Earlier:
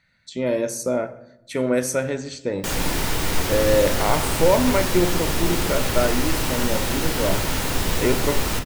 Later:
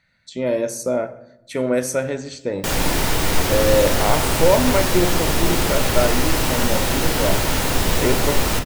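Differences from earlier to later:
background +3.5 dB; master: add peaking EQ 640 Hz +2.5 dB 0.76 oct

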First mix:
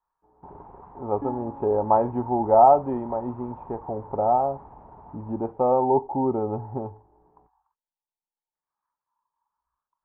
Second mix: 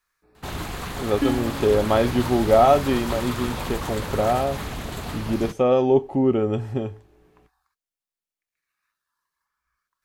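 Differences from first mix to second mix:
speech -6.0 dB; first sound +7.5 dB; master: remove four-pole ladder low-pass 950 Hz, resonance 80%

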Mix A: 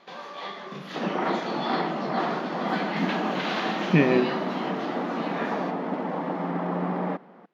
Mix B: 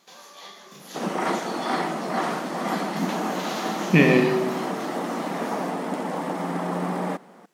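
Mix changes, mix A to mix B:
speech: send +11.0 dB; first sound -10.5 dB; master: remove distance through air 330 m

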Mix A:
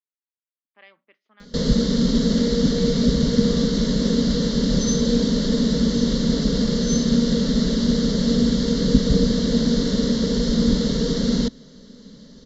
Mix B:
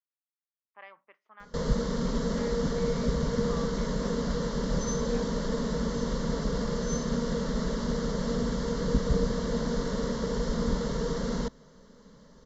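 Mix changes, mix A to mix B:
background -5.5 dB; master: add graphic EQ 250/1000/4000 Hz -9/+10/-11 dB

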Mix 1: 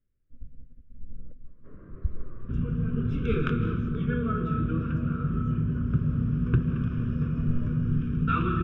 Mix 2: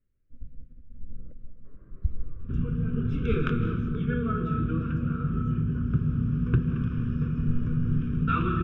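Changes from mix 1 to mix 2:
speech: send +6.5 dB; first sound -9.0 dB

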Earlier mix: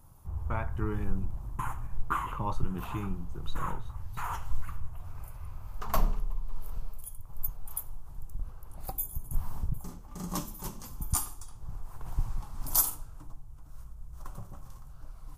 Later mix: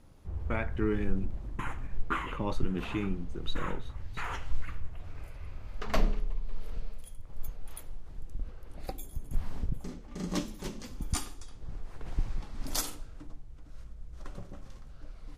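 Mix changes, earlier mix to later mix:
background: add distance through air 62 m; master: add graphic EQ 125/250/500/1000/2000/4000 Hz -5/+7/+7/-9/+9/+6 dB

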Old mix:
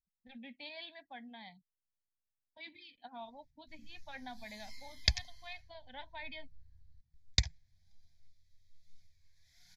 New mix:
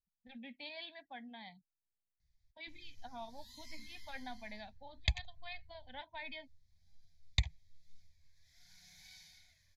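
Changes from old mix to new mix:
first sound: entry -1.00 s; second sound: add static phaser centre 1.5 kHz, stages 6

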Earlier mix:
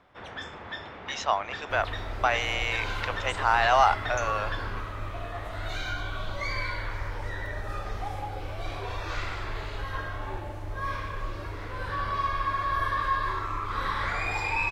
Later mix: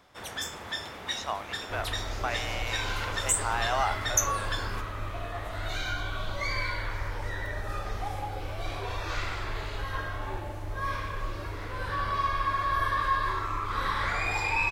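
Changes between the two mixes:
speech -8.0 dB; first sound: remove low-pass 2.9 kHz 12 dB/octave; master: add treble shelf 5.9 kHz +6 dB

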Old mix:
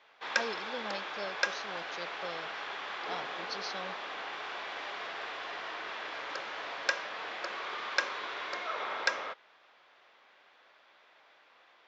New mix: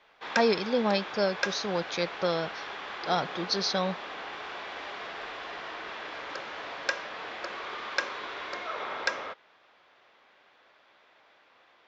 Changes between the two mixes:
speech +12.0 dB; master: add bass shelf 310 Hz +9 dB

